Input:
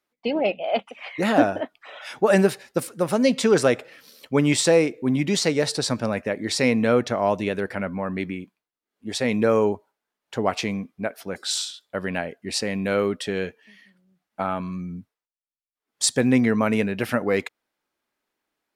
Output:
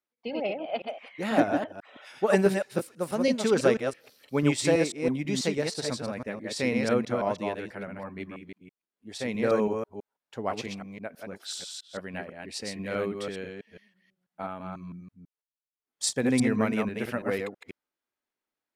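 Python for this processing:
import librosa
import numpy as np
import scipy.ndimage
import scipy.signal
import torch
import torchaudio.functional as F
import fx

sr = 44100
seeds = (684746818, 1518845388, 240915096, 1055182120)

y = fx.reverse_delay(x, sr, ms=164, wet_db=-3.0)
y = fx.upward_expand(y, sr, threshold_db=-27.0, expansion=1.5)
y = F.gain(torch.from_numpy(y), -4.5).numpy()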